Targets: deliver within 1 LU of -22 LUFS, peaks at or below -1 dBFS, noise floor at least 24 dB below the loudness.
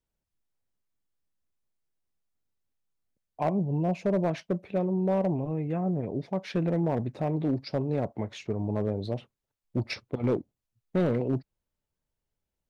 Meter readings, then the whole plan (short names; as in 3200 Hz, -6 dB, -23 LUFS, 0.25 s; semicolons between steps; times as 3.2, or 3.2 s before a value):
clipped 0.5%; flat tops at -19.0 dBFS; loudness -30.0 LUFS; peak -19.0 dBFS; loudness target -22.0 LUFS
-> clip repair -19 dBFS; gain +8 dB